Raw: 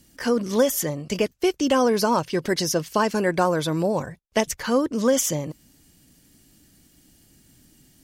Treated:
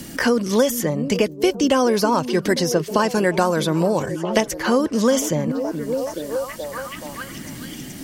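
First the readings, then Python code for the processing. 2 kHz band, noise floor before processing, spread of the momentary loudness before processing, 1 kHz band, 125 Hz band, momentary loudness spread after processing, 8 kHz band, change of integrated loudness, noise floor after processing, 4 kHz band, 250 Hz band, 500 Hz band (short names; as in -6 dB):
+4.5 dB, -58 dBFS, 6 LU, +2.5 dB, +4.5 dB, 14 LU, +0.5 dB, +2.5 dB, -36 dBFS, +3.0 dB, +4.5 dB, +3.5 dB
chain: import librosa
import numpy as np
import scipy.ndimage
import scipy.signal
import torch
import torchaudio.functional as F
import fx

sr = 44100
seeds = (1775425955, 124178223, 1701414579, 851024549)

p1 = x + fx.echo_stepped(x, sr, ms=425, hz=240.0, octaves=0.7, feedback_pct=70, wet_db=-9.0, dry=0)
p2 = fx.band_squash(p1, sr, depth_pct=70)
y = p2 * librosa.db_to_amplitude(3.0)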